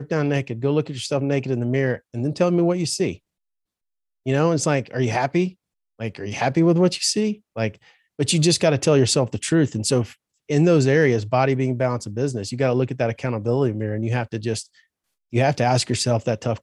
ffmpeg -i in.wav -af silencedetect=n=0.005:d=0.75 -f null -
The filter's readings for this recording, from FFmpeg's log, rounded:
silence_start: 3.17
silence_end: 4.26 | silence_duration: 1.09